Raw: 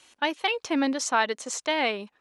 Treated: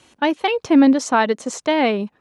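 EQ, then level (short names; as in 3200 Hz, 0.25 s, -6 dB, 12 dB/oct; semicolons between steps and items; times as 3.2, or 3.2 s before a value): tilt shelf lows +4.5 dB, about 1200 Hz; bell 130 Hz +9.5 dB 2.1 oct; +5.0 dB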